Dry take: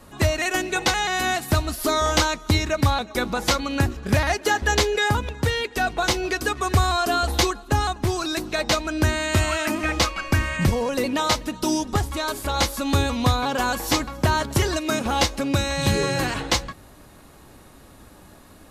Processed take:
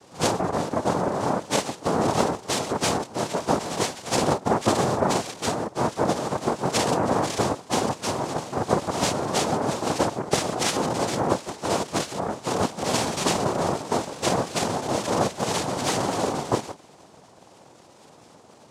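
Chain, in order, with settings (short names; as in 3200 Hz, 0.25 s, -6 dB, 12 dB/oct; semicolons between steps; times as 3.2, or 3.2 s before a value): spectrum mirrored in octaves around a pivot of 460 Hz; noise vocoder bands 2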